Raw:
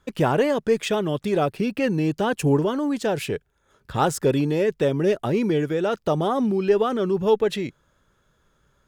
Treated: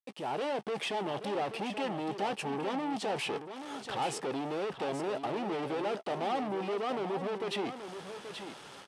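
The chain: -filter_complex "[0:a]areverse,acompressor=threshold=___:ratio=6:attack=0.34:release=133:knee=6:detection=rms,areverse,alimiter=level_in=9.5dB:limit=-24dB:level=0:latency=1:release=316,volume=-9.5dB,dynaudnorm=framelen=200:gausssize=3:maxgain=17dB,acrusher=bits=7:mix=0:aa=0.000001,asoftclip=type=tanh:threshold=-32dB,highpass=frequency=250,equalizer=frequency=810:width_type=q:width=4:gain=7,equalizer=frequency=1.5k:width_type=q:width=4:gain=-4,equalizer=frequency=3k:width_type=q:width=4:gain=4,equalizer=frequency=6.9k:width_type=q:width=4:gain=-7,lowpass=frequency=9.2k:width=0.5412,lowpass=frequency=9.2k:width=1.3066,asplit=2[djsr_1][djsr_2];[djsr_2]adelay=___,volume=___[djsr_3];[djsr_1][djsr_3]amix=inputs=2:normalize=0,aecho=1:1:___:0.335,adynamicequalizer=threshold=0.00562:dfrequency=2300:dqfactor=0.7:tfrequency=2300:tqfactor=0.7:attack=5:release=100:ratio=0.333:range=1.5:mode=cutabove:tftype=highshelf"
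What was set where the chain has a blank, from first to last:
-28dB, 15, -14dB, 830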